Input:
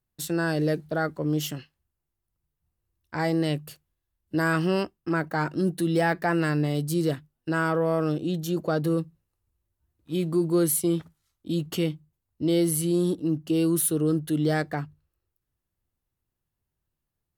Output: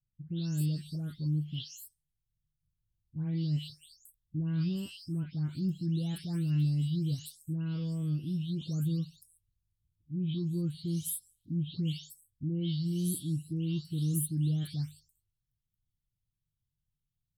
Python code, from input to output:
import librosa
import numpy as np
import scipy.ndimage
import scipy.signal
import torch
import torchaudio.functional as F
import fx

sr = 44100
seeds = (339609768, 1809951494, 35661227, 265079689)

y = fx.spec_delay(x, sr, highs='late', ms=377)
y = fx.curve_eq(y, sr, hz=(150.0, 610.0, 1900.0, 3200.0, 5000.0, 8600.0), db=(0, -30, -29, -3, -8, -10))